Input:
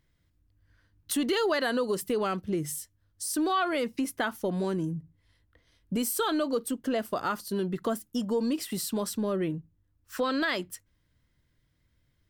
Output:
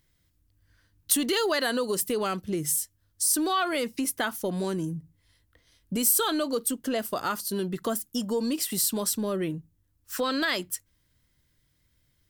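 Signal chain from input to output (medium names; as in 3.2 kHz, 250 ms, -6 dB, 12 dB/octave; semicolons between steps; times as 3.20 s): treble shelf 4.3 kHz +11.5 dB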